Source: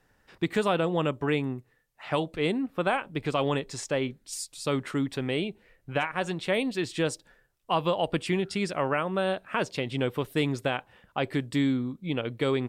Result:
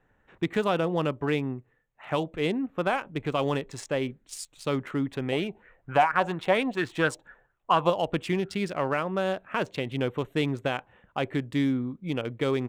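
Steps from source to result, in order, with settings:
adaptive Wiener filter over 9 samples
0:05.32–0:07.90: auto-filter bell 4.3 Hz 710–1,600 Hz +14 dB

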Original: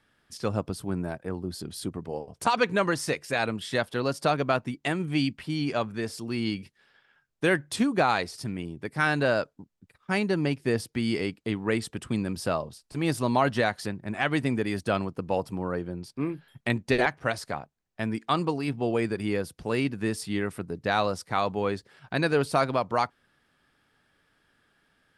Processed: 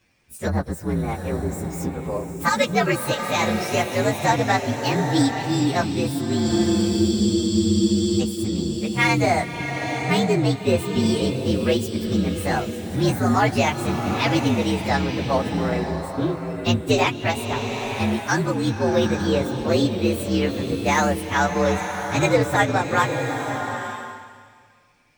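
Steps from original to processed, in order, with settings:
partials spread apart or drawn together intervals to 119%
frozen spectrum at 0:06.49, 1.71 s
slow-attack reverb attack 890 ms, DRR 5 dB
level +8 dB

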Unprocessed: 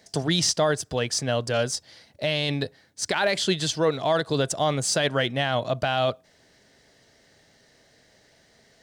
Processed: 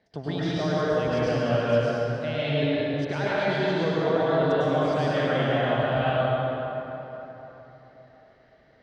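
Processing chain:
speech leveller within 3 dB 0.5 s
high-frequency loss of the air 340 metres
dense smooth reverb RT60 3.7 s, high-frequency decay 0.55×, pre-delay 90 ms, DRR −9 dB
level −7 dB

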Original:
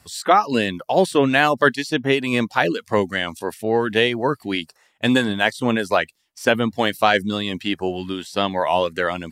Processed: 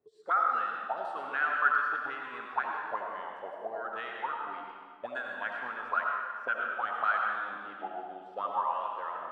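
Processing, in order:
envelope filter 410–1,400 Hz, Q 14, up, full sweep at −14.5 dBFS
comb and all-pass reverb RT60 1.8 s, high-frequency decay 0.9×, pre-delay 45 ms, DRR −0.5 dB

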